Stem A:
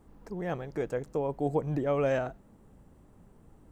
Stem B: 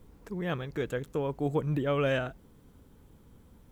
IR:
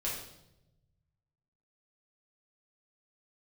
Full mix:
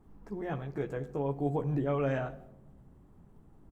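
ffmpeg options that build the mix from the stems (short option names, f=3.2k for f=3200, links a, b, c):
-filter_complex "[0:a]highshelf=f=2.2k:g=-10.5,volume=-2.5dB,asplit=2[a][b];[b]volume=-12dB[c];[1:a]acrossover=split=2600[d][e];[e]acompressor=threshold=-54dB:ratio=4:attack=1:release=60[f];[d][f]amix=inputs=2:normalize=0,agate=range=-33dB:threshold=-48dB:ratio=3:detection=peak,adelay=14,volume=-10dB[g];[2:a]atrim=start_sample=2205[h];[c][h]afir=irnorm=-1:irlink=0[i];[a][g][i]amix=inputs=3:normalize=0,equalizer=f=530:t=o:w=0.47:g=-6"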